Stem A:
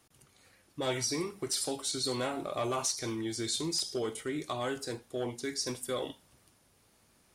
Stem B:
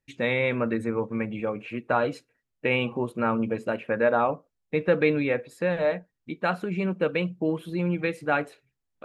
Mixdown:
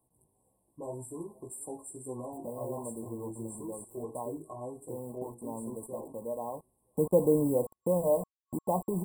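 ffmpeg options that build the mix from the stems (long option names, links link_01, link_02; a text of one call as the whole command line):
ffmpeg -i stem1.wav -i stem2.wav -filter_complex "[0:a]flanger=delay=15.5:depth=3.2:speed=1.9,volume=-3.5dB,asplit=2[link_01][link_02];[link_02]volume=-23dB[link_03];[1:a]acompressor=mode=upward:threshold=-28dB:ratio=2.5,acrusher=bits=5:mix=0:aa=0.000001,adelay=2250,volume=-2dB,afade=type=in:start_time=6.67:duration=0.24:silence=0.251189[link_04];[link_03]aecho=0:1:476|952|1428|1904:1|0.25|0.0625|0.0156[link_05];[link_01][link_04][link_05]amix=inputs=3:normalize=0,afftfilt=real='re*(1-between(b*sr/4096,1100,7500))':imag='im*(1-between(b*sr/4096,1100,7500))':win_size=4096:overlap=0.75" out.wav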